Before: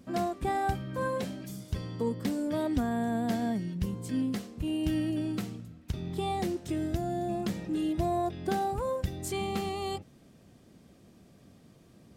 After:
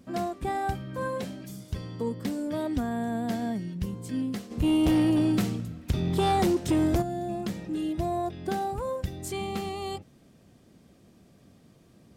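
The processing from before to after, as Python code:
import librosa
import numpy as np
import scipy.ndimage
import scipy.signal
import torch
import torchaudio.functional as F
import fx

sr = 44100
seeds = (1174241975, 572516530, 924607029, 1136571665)

y = fx.fold_sine(x, sr, drive_db=6, ceiling_db=-18.5, at=(4.5, 7.01), fade=0.02)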